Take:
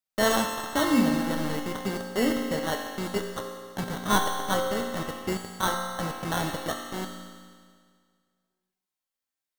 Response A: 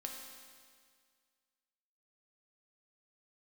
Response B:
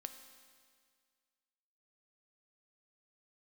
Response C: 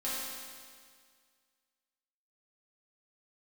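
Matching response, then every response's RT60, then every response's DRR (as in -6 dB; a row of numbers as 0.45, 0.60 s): A; 1.9, 1.9, 1.9 s; 0.0, 7.0, -9.5 dB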